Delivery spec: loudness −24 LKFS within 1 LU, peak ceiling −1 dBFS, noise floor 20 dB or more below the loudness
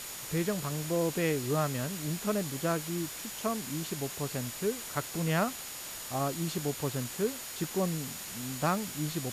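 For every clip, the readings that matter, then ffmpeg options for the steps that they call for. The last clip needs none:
interfering tone 6,900 Hz; level of the tone −48 dBFS; background noise floor −42 dBFS; target noise floor −53 dBFS; integrated loudness −33.0 LKFS; sample peak −15.5 dBFS; target loudness −24.0 LKFS
→ -af "bandreject=frequency=6900:width=30"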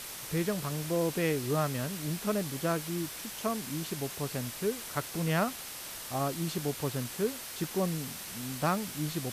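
interfering tone none found; background noise floor −43 dBFS; target noise floor −53 dBFS
→ -af "afftdn=noise_reduction=10:noise_floor=-43"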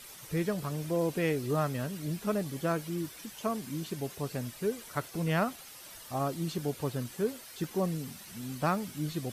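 background noise floor −49 dBFS; target noise floor −54 dBFS
→ -af "afftdn=noise_reduction=6:noise_floor=-49"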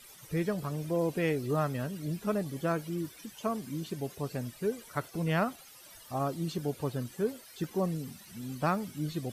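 background noise floor −53 dBFS; target noise floor −54 dBFS
→ -af "afftdn=noise_reduction=6:noise_floor=-53"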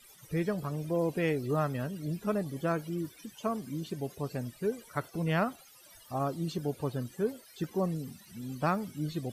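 background noise floor −56 dBFS; integrated loudness −34.0 LKFS; sample peak −17.0 dBFS; target loudness −24.0 LKFS
→ -af "volume=10dB"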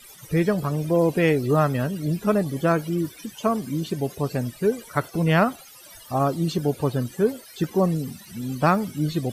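integrated loudness −24.0 LKFS; sample peak −7.0 dBFS; background noise floor −46 dBFS

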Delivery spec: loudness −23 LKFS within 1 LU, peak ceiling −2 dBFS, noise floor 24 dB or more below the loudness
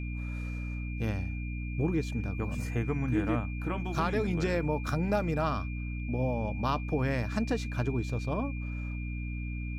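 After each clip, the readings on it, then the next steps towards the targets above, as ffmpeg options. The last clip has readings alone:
mains hum 60 Hz; hum harmonics up to 300 Hz; level of the hum −33 dBFS; interfering tone 2,400 Hz; level of the tone −45 dBFS; integrated loudness −32.5 LKFS; sample peak −17.0 dBFS; target loudness −23.0 LKFS
→ -af "bandreject=frequency=60:width_type=h:width=4,bandreject=frequency=120:width_type=h:width=4,bandreject=frequency=180:width_type=h:width=4,bandreject=frequency=240:width_type=h:width=4,bandreject=frequency=300:width_type=h:width=4"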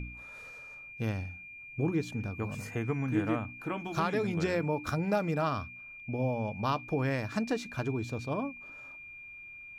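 mains hum none found; interfering tone 2,400 Hz; level of the tone −45 dBFS
→ -af "bandreject=frequency=2400:width=30"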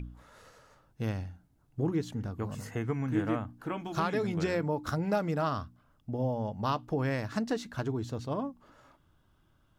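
interfering tone none found; integrated loudness −33.0 LKFS; sample peak −17.0 dBFS; target loudness −23.0 LKFS
→ -af "volume=10dB"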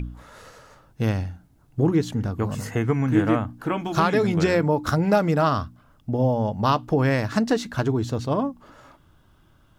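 integrated loudness −23.0 LKFS; sample peak −7.0 dBFS; background noise floor −58 dBFS

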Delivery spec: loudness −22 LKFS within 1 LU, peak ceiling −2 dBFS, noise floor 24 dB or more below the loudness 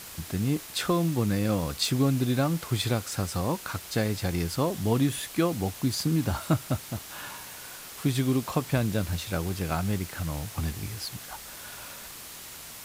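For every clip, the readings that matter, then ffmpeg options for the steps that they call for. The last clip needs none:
background noise floor −43 dBFS; target noise floor −53 dBFS; integrated loudness −28.5 LKFS; sample peak −12.0 dBFS; target loudness −22.0 LKFS
→ -af "afftdn=noise_reduction=10:noise_floor=-43"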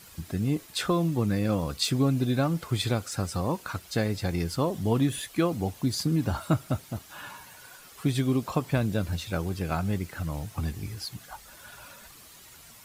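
background noise floor −51 dBFS; target noise floor −53 dBFS
→ -af "afftdn=noise_reduction=6:noise_floor=-51"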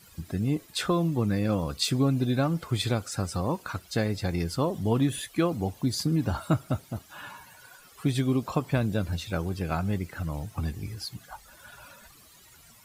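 background noise floor −55 dBFS; integrated loudness −28.5 LKFS; sample peak −12.0 dBFS; target loudness −22.0 LKFS
→ -af "volume=6.5dB"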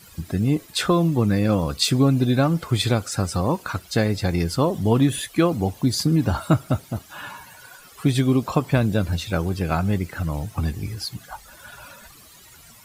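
integrated loudness −22.0 LKFS; sample peak −5.5 dBFS; background noise floor −48 dBFS

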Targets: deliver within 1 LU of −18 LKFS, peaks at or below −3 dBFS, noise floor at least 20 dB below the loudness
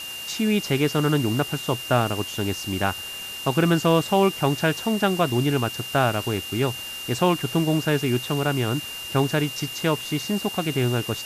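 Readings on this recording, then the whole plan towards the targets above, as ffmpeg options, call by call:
interfering tone 2,800 Hz; level of the tone −33 dBFS; background noise floor −35 dBFS; target noise floor −44 dBFS; integrated loudness −23.5 LKFS; sample peak −7.0 dBFS; target loudness −18.0 LKFS
→ -af "bandreject=frequency=2800:width=30"
-af "afftdn=noise_reduction=9:noise_floor=-35"
-af "volume=5.5dB,alimiter=limit=-3dB:level=0:latency=1"

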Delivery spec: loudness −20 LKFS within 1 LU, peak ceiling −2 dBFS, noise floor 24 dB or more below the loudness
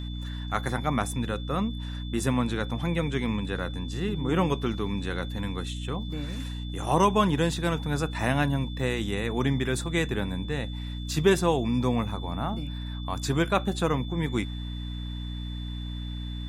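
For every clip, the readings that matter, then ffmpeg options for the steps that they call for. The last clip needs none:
mains hum 60 Hz; hum harmonics up to 300 Hz; level of the hum −32 dBFS; interfering tone 3,500 Hz; level of the tone −44 dBFS; integrated loudness −28.5 LKFS; sample peak −8.0 dBFS; target loudness −20.0 LKFS
→ -af "bandreject=frequency=60:width_type=h:width=6,bandreject=frequency=120:width_type=h:width=6,bandreject=frequency=180:width_type=h:width=6,bandreject=frequency=240:width_type=h:width=6,bandreject=frequency=300:width_type=h:width=6"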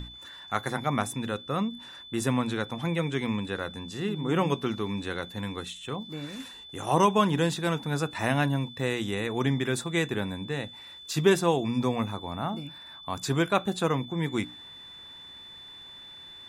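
mains hum none found; interfering tone 3,500 Hz; level of the tone −44 dBFS
→ -af "bandreject=frequency=3500:width=30"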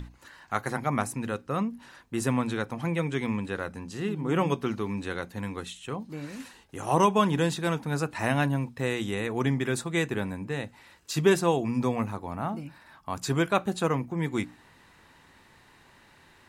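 interfering tone none found; integrated loudness −29.0 LKFS; sample peak −8.5 dBFS; target loudness −20.0 LKFS
→ -af "volume=9dB,alimiter=limit=-2dB:level=0:latency=1"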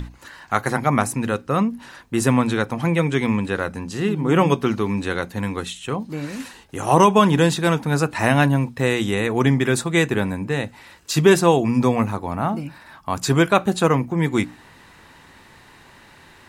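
integrated loudness −20.5 LKFS; sample peak −2.0 dBFS; background noise floor −49 dBFS

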